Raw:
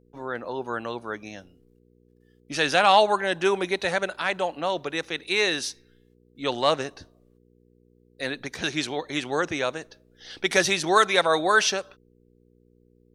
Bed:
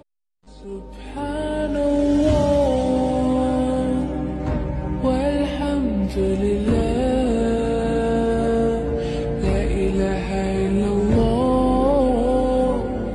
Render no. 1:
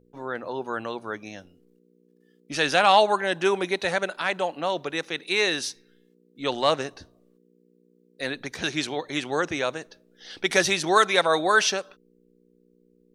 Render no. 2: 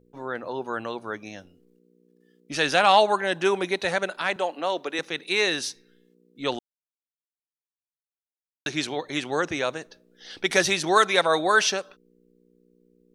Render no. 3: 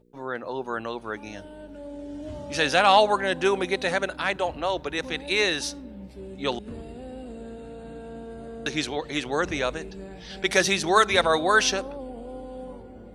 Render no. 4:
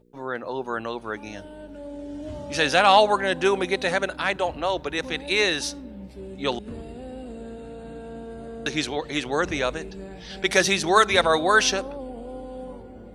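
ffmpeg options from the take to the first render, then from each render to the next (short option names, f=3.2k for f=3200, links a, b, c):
-af "bandreject=f=60:t=h:w=4,bandreject=f=120:t=h:w=4"
-filter_complex "[0:a]asettb=1/sr,asplit=3[a][b][c];[a]atrim=end=4.364[d];[b]atrim=start=4.36:end=4.99,asetpts=PTS-STARTPTS,afade=t=in:d=0.004:c=qsin,afade=t=out:st=0.626:d=0.004:c=qsin,highpass=f=220:w=0.5412,highpass=f=220:w=1.3066[e];[c]atrim=start=4.986[f];[d][e]acrossfade=d=0.004:c1=hsin:c2=qsin[g];[g][f]acrossfade=d=0.004:c1=qsin:c2=hsin,asplit=3[h][i][j];[h]atrim=end=6.59,asetpts=PTS-STARTPTS,afade=t=out:st=6.586:d=0.004:c=hsin[k];[i]atrim=start=6.59:end=8.66,asetpts=PTS-STARTPTS,volume=0[l];[j]atrim=start=8.66,asetpts=PTS-STARTPTS,afade=t=in:d=0.004:c=hsin[m];[k][l][m]concat=n=3:v=0:a=1"
-filter_complex "[1:a]volume=-19.5dB[a];[0:a][a]amix=inputs=2:normalize=0"
-af "volume=1.5dB"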